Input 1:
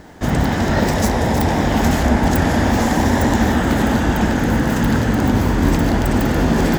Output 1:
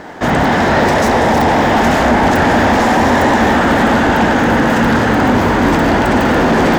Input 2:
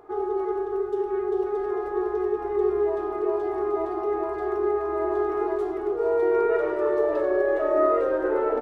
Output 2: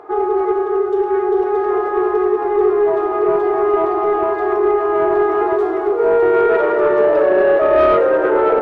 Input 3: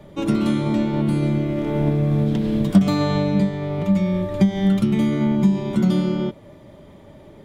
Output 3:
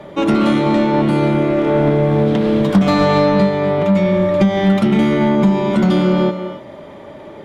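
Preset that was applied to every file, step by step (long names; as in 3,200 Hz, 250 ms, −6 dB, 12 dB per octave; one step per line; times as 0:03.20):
reverb whose tail is shaped and stops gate 310 ms rising, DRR 10 dB
mid-hump overdrive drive 22 dB, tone 1,600 Hz, clips at −1.5 dBFS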